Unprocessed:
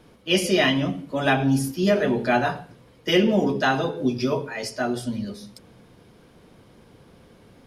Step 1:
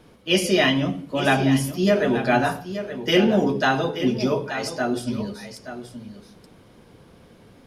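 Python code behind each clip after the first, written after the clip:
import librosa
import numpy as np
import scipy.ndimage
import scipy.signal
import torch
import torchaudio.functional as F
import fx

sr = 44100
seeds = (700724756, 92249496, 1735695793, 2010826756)

y = x + 10.0 ** (-11.0 / 20.0) * np.pad(x, (int(876 * sr / 1000.0), 0))[:len(x)]
y = y * 10.0 ** (1.0 / 20.0)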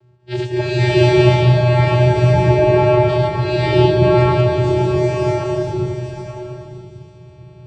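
y = fx.reverse_delay(x, sr, ms=187, wet_db=-1)
y = fx.vocoder(y, sr, bands=8, carrier='square', carrier_hz=123.0)
y = fx.rev_bloom(y, sr, seeds[0], attack_ms=640, drr_db=-11.0)
y = y * 10.0 ** (-2.5 / 20.0)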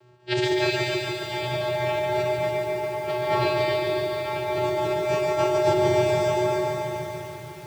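y = fx.highpass(x, sr, hz=530.0, slope=6)
y = fx.over_compress(y, sr, threshold_db=-28.0, ratio=-1.0)
y = fx.echo_crushed(y, sr, ms=143, feedback_pct=80, bits=8, wet_db=-4.0)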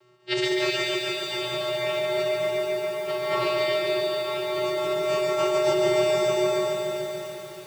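y = fx.low_shelf(x, sr, hz=470.0, db=-10.0)
y = y + 0.68 * np.pad(y, (int(5.3 * sr / 1000.0), 0))[:len(y)]
y = y + 10.0 ** (-9.5 / 20.0) * np.pad(y, (int(434 * sr / 1000.0), 0))[:len(y)]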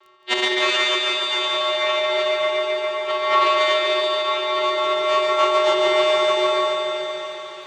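y = fx.tracing_dist(x, sr, depth_ms=0.11)
y = fx.cabinet(y, sr, low_hz=470.0, low_slope=12, high_hz=6500.0, hz=(1100.0, 2000.0, 3400.0, 5100.0), db=(10, 4, 8, -6))
y = fx.dmg_crackle(y, sr, seeds[1], per_s=11.0, level_db=-45.0)
y = y * 10.0 ** (4.5 / 20.0)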